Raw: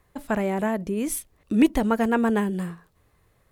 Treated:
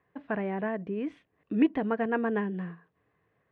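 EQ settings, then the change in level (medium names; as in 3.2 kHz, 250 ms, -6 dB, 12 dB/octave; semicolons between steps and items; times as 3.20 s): cabinet simulation 210–2300 Hz, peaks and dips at 230 Hz -6 dB, 360 Hz -6 dB, 570 Hz -8 dB, 870 Hz -8 dB, 1.3 kHz -9 dB, 2.2 kHz -6 dB; 0.0 dB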